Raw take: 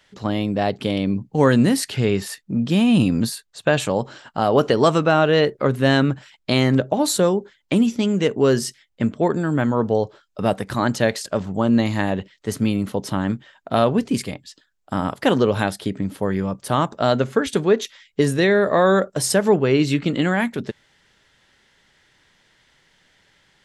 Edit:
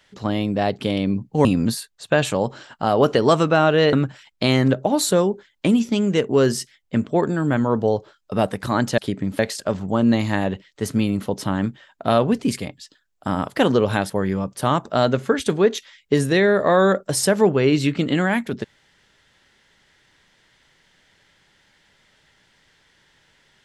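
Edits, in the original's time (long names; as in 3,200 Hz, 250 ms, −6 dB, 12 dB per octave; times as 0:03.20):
0:01.45–0:03.00: remove
0:05.48–0:06.00: remove
0:15.76–0:16.17: move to 0:11.05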